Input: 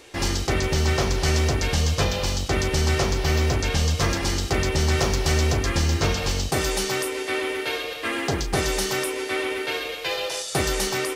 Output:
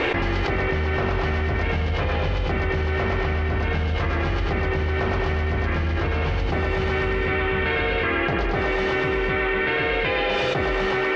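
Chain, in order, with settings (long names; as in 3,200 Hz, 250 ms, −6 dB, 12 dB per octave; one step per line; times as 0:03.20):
transistor ladder low-pass 2,900 Hz, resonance 25%
echo with a time of its own for lows and highs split 310 Hz, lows 752 ms, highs 104 ms, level −4 dB
envelope flattener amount 100%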